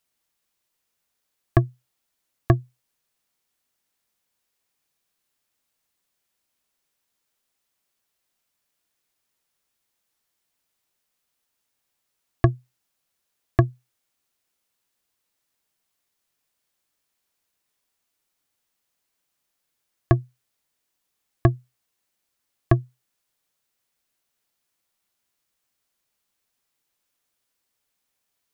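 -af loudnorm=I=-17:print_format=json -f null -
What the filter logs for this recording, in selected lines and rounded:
"input_i" : "-24.9",
"input_tp" : "-4.1",
"input_lra" : "3.0",
"input_thresh" : "-36.1",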